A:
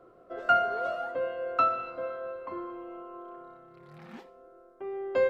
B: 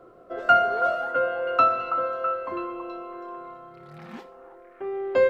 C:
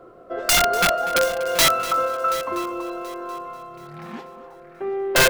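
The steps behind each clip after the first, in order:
echo through a band-pass that steps 327 ms, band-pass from 990 Hz, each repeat 0.7 octaves, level −6 dB; level +5.5 dB
wrap-around overflow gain 15.5 dB; echo machine with several playback heads 243 ms, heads first and third, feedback 43%, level −16.5 dB; level +4.5 dB

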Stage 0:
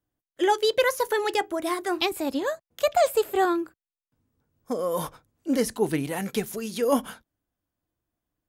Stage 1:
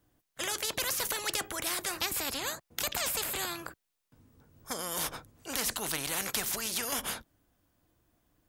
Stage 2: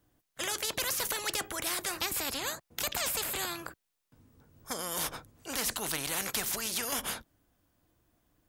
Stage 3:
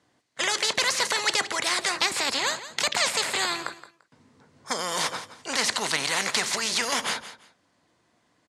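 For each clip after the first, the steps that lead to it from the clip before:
every bin compressed towards the loudest bin 4 to 1
hard clipping −22 dBFS, distortion −22 dB
loudspeaker in its box 180–8,300 Hz, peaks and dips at 310 Hz −5 dB, 980 Hz +4 dB, 2,000 Hz +6 dB, 4,300 Hz +5 dB; repeating echo 171 ms, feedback 21%, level −14 dB; level +7.5 dB

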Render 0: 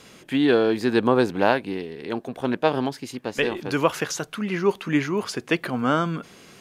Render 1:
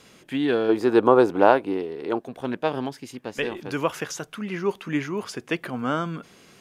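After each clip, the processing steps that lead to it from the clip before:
gain on a spectral selection 0:00.69–0:02.19, 270–1,500 Hz +8 dB
dynamic equaliser 4,200 Hz, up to −6 dB, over −54 dBFS, Q 7.5
level −4 dB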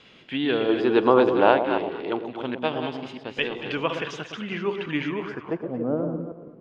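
delay that plays each chunk backwards 162 ms, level −8 dB
low-pass filter sweep 3,200 Hz → 500 Hz, 0:05.08–0:05.70
on a send: delay that swaps between a low-pass and a high-pass 114 ms, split 890 Hz, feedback 54%, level −7 dB
on the sum: level −2.5 dB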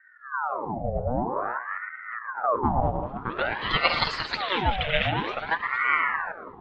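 backwards echo 92 ms −11 dB
low-pass filter sweep 160 Hz → 3,300 Hz, 0:02.14–0:04.17
ring modulator whose carrier an LFO sweeps 1,000 Hz, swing 70%, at 0.51 Hz
level +4.5 dB

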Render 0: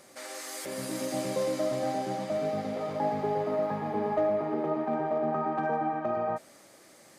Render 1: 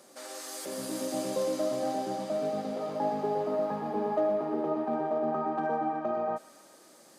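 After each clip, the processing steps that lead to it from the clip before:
Chebyshev high-pass filter 220 Hz, order 2
parametric band 2,100 Hz −7.5 dB 0.53 octaves
delay with a high-pass on its return 123 ms, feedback 72%, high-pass 2,400 Hz, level −9 dB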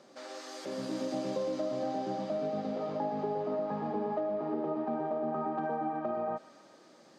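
high-frequency loss of the air 200 metres
downward compressor, threshold −30 dBFS, peak gain reduction 6.5 dB
bass and treble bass +3 dB, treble +7 dB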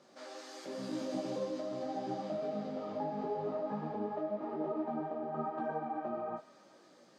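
micro pitch shift up and down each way 30 cents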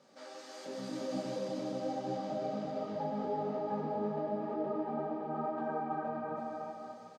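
notch comb filter 350 Hz
on a send: bouncing-ball delay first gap 330 ms, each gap 0.7×, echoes 5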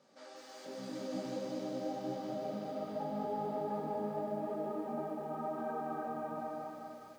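feedback echo at a low word length 198 ms, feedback 55%, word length 10 bits, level −6 dB
level −3.5 dB

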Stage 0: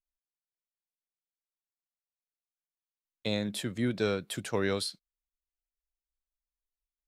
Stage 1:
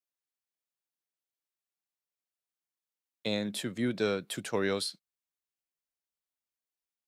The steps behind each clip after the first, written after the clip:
high-pass filter 140 Hz 12 dB per octave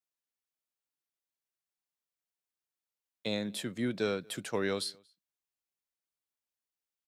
slap from a distant wall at 40 metres, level −28 dB
level −2 dB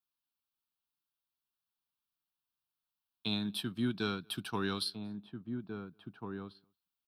phaser with its sweep stopped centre 2,000 Hz, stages 6
transient designer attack 0 dB, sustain −4 dB
slap from a distant wall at 290 metres, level −6 dB
level +3 dB

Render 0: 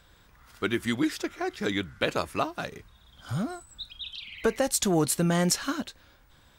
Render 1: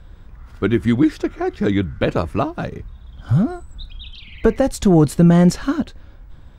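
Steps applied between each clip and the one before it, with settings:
spectral tilt −3.5 dB per octave
level +5.5 dB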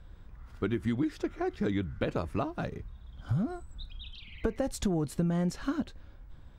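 downward compressor 6 to 1, threshold −17 dBFS, peak gain reduction 9.5 dB
level −9 dB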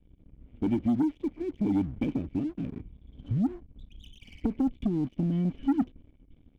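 rotating-speaker cabinet horn 0.9 Hz
formant resonators in series i
leveller curve on the samples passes 2
level +5.5 dB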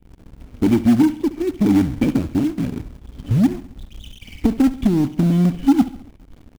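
in parallel at −5 dB: log-companded quantiser 4 bits
on the sum: repeating echo 69 ms, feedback 50%, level −16 dB
level +7.5 dB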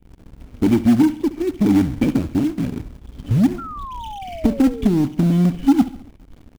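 sound drawn into the spectrogram fall, 0:03.58–0:04.92, 400–1,400 Hz −32 dBFS

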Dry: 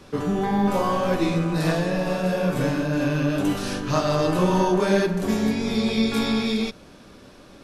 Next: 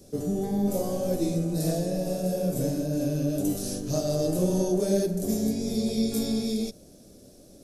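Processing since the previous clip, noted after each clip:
drawn EQ curve 670 Hz 0 dB, 970 Hz −20 dB, 2,900 Hz −13 dB, 5,900 Hz +5 dB, 12,000 Hz +12 dB
level −4 dB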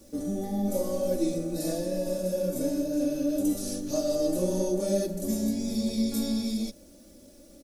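bit reduction 10 bits
comb filter 3.5 ms, depth 88%
level −4 dB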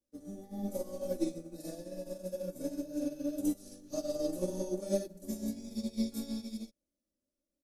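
expander for the loud parts 2.5 to 1, over −45 dBFS
level −3 dB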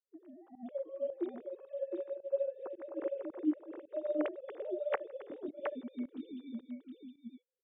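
three sine waves on the formant tracks
single-tap delay 716 ms −5 dB
fake sidechain pumping 109 BPM, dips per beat 1, −22 dB, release 139 ms
level −2.5 dB

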